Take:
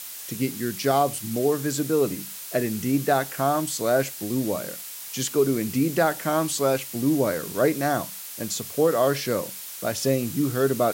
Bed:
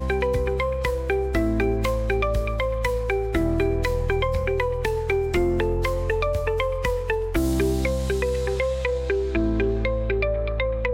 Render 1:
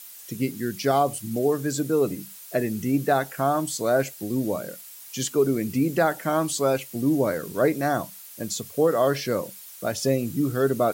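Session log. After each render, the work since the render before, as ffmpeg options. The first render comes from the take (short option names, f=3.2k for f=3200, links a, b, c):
-af "afftdn=nr=9:nf=-38"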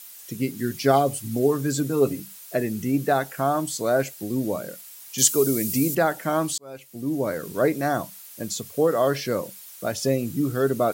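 -filter_complex "[0:a]asettb=1/sr,asplit=3[a][b][c];[a]atrim=end=0.584[d];[b]atrim=start=0.58:end=2.2,asetpts=PTS-STARTPTS,afade=t=in:d=0.004:c=qsin,afade=t=out:st=1.616:d=0.004:c=qsin,aecho=1:1:7.5:0.62,atrim=end_sample=71442[e];[c]atrim=start=2.196[f];[d][e]acrossfade=d=0.004:c1=hsin:c2=qsin[g];[g][f]acrossfade=d=0.004:c1=qsin:c2=hsin,asettb=1/sr,asplit=3[h][i][j];[h]atrim=end=5.184[k];[i]atrim=start=5.18:end=5.95,asetpts=PTS-STARTPTS,afade=t=in:d=0.004:c=qsin,afade=t=out:st=0.766:d=0.004:c=qsin,bass=f=250:g=0,treble=f=4k:g=14[l];[j]atrim=start=5.946[m];[k][l]acrossfade=d=0.004:c1=hsin:c2=qsin[n];[n][m]acrossfade=d=0.004:c1=qsin:c2=hsin,asplit=2[o][p];[o]atrim=end=6.58,asetpts=PTS-STARTPTS,afade=t=out:st=6.576:d=0.004:c=hsin[q];[p]atrim=start=6.58,asetpts=PTS-STARTPTS,afade=t=in:d=0.89[r];[q][r]concat=n=2:v=0:a=1"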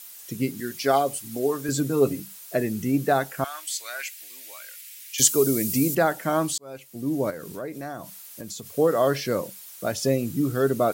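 -filter_complex "[0:a]asettb=1/sr,asplit=3[a][b][c];[a]atrim=end=0.604[d];[b]atrim=start=0.6:end=1.69,asetpts=PTS-STARTPTS,afade=t=in:d=0.004:c=qsin,afade=t=out:st=1.086:d=0.004:c=qsin,highpass=f=460:p=1[e];[c]atrim=start=1.686[f];[d][e]acrossfade=d=0.004:c1=hsin:c2=qsin[g];[g][f]acrossfade=d=0.004:c1=qsin:c2=hsin,asettb=1/sr,asplit=3[h][i][j];[h]atrim=end=3.444[k];[i]atrim=start=3.44:end=5.2,asetpts=PTS-STARTPTS,afade=t=in:d=0.004:c=qsin,afade=t=out:st=1.756:d=0.004:c=qsin,highpass=f=2.2k:t=q:w=2.1[l];[j]atrim=start=5.196[m];[k][l]acrossfade=d=0.004:c1=hsin:c2=qsin[n];[n][m]acrossfade=d=0.004:c1=qsin:c2=hsin,asettb=1/sr,asplit=3[o][p][q];[o]atrim=end=7.304[r];[p]atrim=start=7.3:end=8.71,asetpts=PTS-STARTPTS,afade=t=in:d=0.004:c=qsin,afade=t=out:st=1.406:d=0.004:c=qsin,acompressor=threshold=-34dB:ratio=3:attack=3.2:release=140:knee=1:detection=peak[s];[q]atrim=start=8.706[t];[r][s]acrossfade=d=0.004:c1=hsin:c2=qsin[u];[u][t]acrossfade=d=0.004:c1=qsin:c2=hsin"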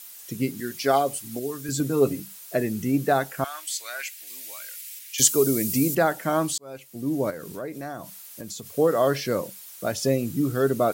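-filter_complex "[0:a]asettb=1/sr,asplit=3[a][b][c];[a]atrim=end=1.394[d];[b]atrim=start=1.39:end=1.8,asetpts=PTS-STARTPTS,afade=t=in:d=0.004:c=qsin,afade=t=out:st=0.406:d=0.004:c=qsin,equalizer=f=700:w=0.67:g=-11.5[e];[c]atrim=start=1.796[f];[d][e]acrossfade=d=0.004:c1=hsin:c2=qsin[g];[g][f]acrossfade=d=0.004:c1=qsin:c2=hsin,asettb=1/sr,asplit=3[h][i][j];[h]atrim=end=4.274[k];[i]atrim=start=4.27:end=4.99,asetpts=PTS-STARTPTS,afade=t=in:d=0.004:c=qsin,afade=t=out:st=0.716:d=0.004:c=qsin,bass=f=250:g=7,treble=f=4k:g=4[l];[j]atrim=start=4.986[m];[k][l]acrossfade=d=0.004:c1=hsin:c2=qsin[n];[n][m]acrossfade=d=0.004:c1=qsin:c2=hsin"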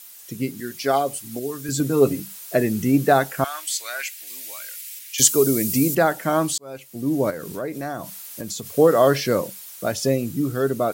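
-af "dynaudnorm=f=400:g=9:m=7dB"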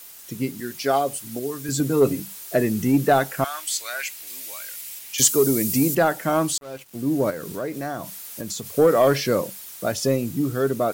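-af "acrusher=bits=6:mix=0:aa=0.5,asoftclip=type=tanh:threshold=-7dB"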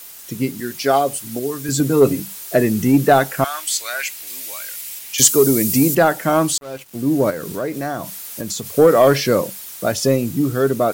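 -af "volume=5dB"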